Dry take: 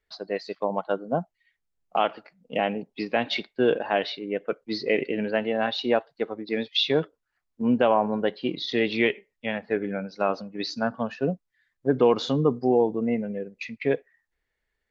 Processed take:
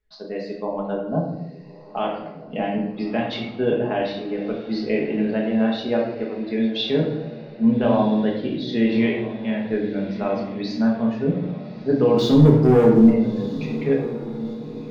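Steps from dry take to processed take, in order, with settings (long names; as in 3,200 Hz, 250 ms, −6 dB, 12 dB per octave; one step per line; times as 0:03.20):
low-shelf EQ 320 Hz +11 dB
0:12.17–0:13.10: leveller curve on the samples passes 2
on a send: feedback delay with all-pass diffusion 1,307 ms, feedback 50%, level −15.5 dB
on the sum: rectangular room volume 270 cubic metres, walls mixed, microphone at 1.4 metres
level −7 dB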